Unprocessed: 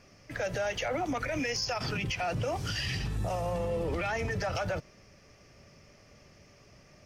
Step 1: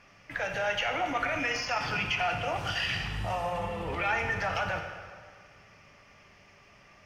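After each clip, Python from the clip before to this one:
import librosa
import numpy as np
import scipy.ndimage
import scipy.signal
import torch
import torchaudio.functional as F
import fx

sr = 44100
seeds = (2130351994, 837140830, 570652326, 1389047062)

y = fx.band_shelf(x, sr, hz=1600.0, db=10.0, octaves=2.5)
y = fx.rev_plate(y, sr, seeds[0], rt60_s=1.8, hf_ratio=0.85, predelay_ms=0, drr_db=3.5)
y = y * librosa.db_to_amplitude(-5.5)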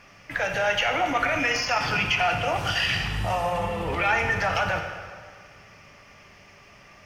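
y = fx.high_shelf(x, sr, hz=9600.0, db=6.0)
y = y * librosa.db_to_amplitude(6.0)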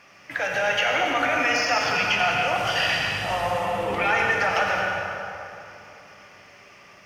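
y = fx.highpass(x, sr, hz=260.0, slope=6)
y = fx.rev_plate(y, sr, seeds[1], rt60_s=2.8, hf_ratio=0.6, predelay_ms=75, drr_db=1.0)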